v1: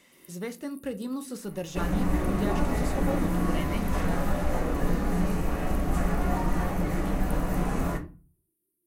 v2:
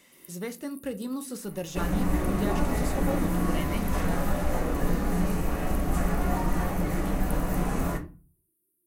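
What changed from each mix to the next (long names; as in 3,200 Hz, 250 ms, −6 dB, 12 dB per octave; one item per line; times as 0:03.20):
master: add high-shelf EQ 8,100 Hz +6 dB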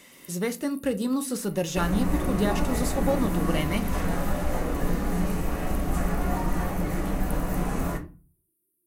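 speech +7.0 dB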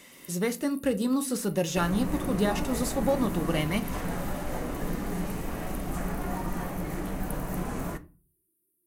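second sound: send −10.5 dB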